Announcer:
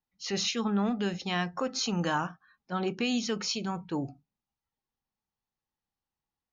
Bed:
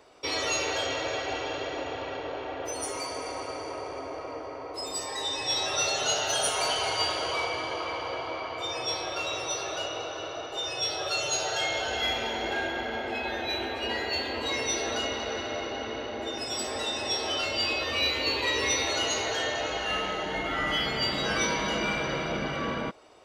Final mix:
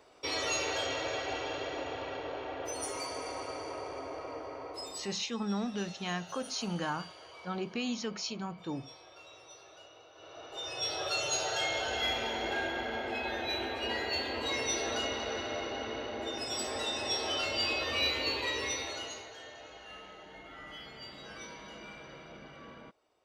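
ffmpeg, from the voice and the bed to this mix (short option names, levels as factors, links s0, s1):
-filter_complex "[0:a]adelay=4750,volume=0.531[s0];[1:a]volume=5.01,afade=t=out:st=4.67:d=0.52:silence=0.133352,afade=t=in:st=10.13:d=0.86:silence=0.125893,afade=t=out:st=18.07:d=1.23:silence=0.16788[s1];[s0][s1]amix=inputs=2:normalize=0"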